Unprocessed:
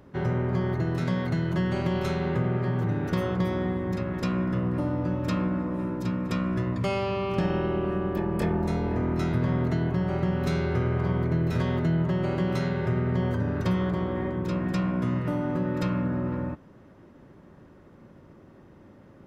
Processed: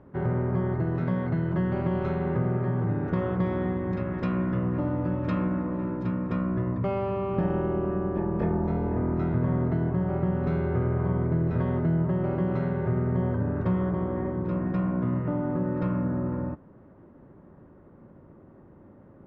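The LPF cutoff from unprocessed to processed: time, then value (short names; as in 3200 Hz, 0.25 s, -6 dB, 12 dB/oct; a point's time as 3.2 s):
3.09 s 1500 Hz
3.62 s 2200 Hz
5.88 s 2200 Hz
6.48 s 1300 Hz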